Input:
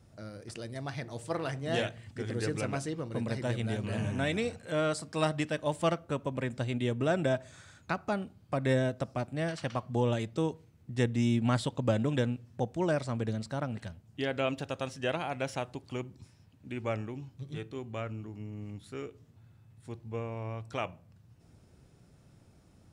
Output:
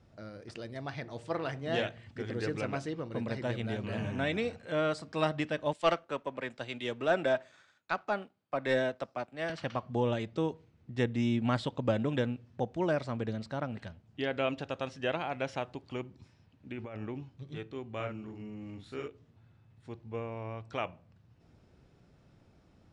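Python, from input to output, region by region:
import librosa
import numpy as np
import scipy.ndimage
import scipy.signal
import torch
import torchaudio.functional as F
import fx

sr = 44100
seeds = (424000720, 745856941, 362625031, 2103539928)

y = fx.chain(x, sr, fx.highpass(hz=570.0, slope=6),
    fx.leveller(passes=1),
    fx.band_widen(depth_pct=70), at=(5.73, 9.5))
y = fx.chain(y, sr, fx.over_compress(threshold_db=-38.0, ratio=-1.0),
    fx.high_shelf(hz=6800.0, db=-10.0), at=(16.71, 17.23))
y = fx.chain(y, sr, fx.high_shelf(hz=5600.0, db=4.0),
    fx.doubler(ms=42.0, db=-3.0), at=(17.96, 19.08))
y = scipy.signal.sosfilt(scipy.signal.butter(2, 4400.0, 'lowpass', fs=sr, output='sos'), y)
y = fx.peak_eq(y, sr, hz=110.0, db=-4.0, octaves=1.7)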